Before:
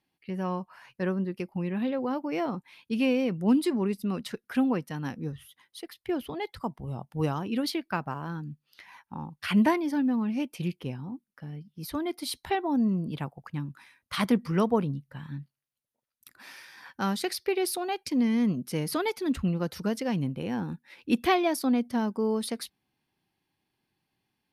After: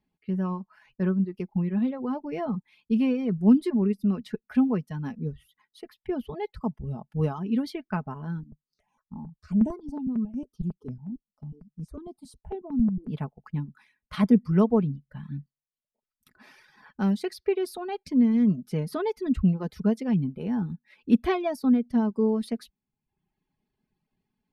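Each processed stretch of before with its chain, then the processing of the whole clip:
8.43–13.07 EQ curve 110 Hz 0 dB, 720 Hz -6 dB, 1300 Hz -9 dB, 1900 Hz -26 dB, 2800 Hz -18 dB, 8000 Hz +1 dB, 12000 Hz -12 dB + step phaser 11 Hz 440–4400 Hz
whole clip: reverb removal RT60 0.78 s; tilt -3 dB/oct; comb 4.7 ms, depth 55%; gain -3.5 dB

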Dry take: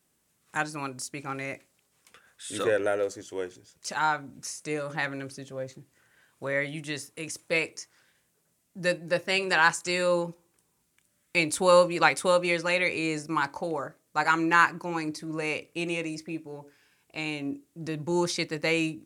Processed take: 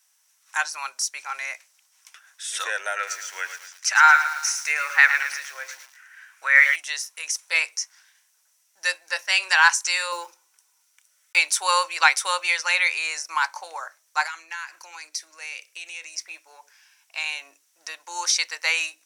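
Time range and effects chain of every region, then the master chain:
2.96–6.76 band shelf 1800 Hz +10 dB 1.3 oct + echo 0.105 s -14.5 dB + lo-fi delay 0.112 s, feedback 55%, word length 7-bit, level -9.5 dB
10.12–11.39 block floating point 7-bit + notch 1600 Hz, Q 6.9 + small resonant body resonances 370/1500 Hz, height 9 dB, ringing for 20 ms
14.26–16.16 bell 1000 Hz -8.5 dB 1.1 oct + compressor 8:1, threshold -34 dBFS
whole clip: HPF 920 Hz 24 dB/oct; bell 5800 Hz +11 dB 0.25 oct; notch 1200 Hz, Q 12; gain +6.5 dB

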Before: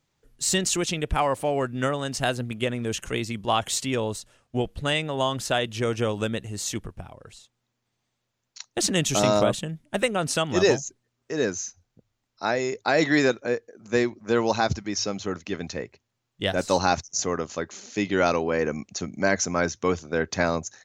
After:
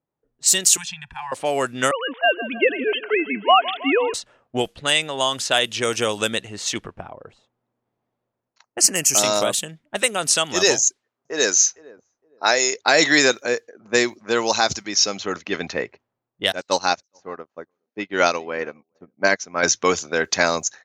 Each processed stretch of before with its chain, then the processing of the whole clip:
0.77–1.32 Chebyshev band-stop 190–830 Hz, order 4 + comb 1.2 ms, depth 69% + compressor 5:1, threshold -29 dBFS
1.91–4.14 sine-wave speech + thinning echo 0.159 s, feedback 60%, high-pass 200 Hz, level -15 dB
8.63–9.18 hard clip -11.5 dBFS + Butterworth band-stop 3600 Hz, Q 2
10.79–12.83 tone controls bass -9 dB, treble +4 dB + feedback echo 0.461 s, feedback 25%, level -22 dB
16.52–19.63 running mean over 4 samples + echo 0.418 s -21 dB + upward expander 2.5:1, over -41 dBFS
whole clip: low-pass opened by the level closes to 650 Hz, open at -21 dBFS; RIAA curve recording; AGC; gain -1 dB

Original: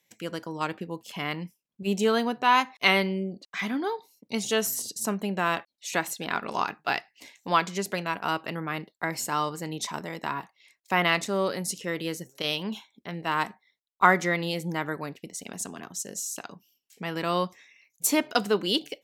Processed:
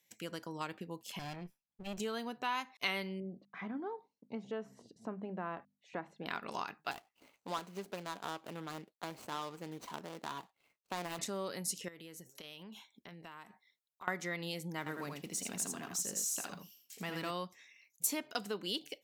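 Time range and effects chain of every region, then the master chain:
1.19–2 minimum comb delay 1.2 ms + high shelf 3800 Hz -11 dB
3.2–6.26 LPF 1100 Hz + notches 50/100/150/200/250 Hz
6.91–11.19 median filter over 25 samples + low shelf 180 Hz -10 dB
11.88–14.08 dynamic EQ 4800 Hz, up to -6 dB, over -47 dBFS, Q 1.8 + compressor, threshold -42 dBFS
14.78–17.31 G.711 law mismatch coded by mu + HPF 51 Hz + echo 81 ms -5.5 dB
whole clip: low shelf 240 Hz +6 dB; compressor 2.5:1, threshold -31 dBFS; tilt +1.5 dB/oct; gain -6.5 dB

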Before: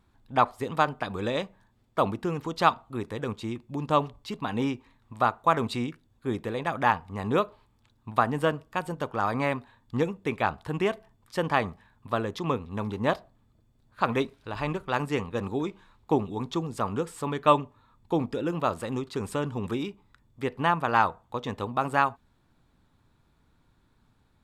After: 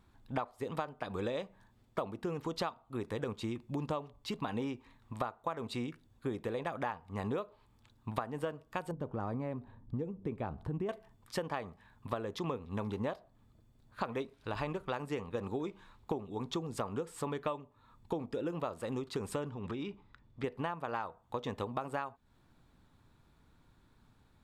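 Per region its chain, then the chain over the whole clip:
8.91–10.89 tilt shelf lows +9.5 dB, about 720 Hz + compressor 1.5:1, threshold -45 dBFS + mismatched tape noise reduction decoder only
19.5–20.44 LPF 4500 Hz + compressor, threshold -35 dBFS
whole clip: dynamic EQ 520 Hz, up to +5 dB, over -36 dBFS, Q 1.2; compressor 12:1, threshold -33 dBFS

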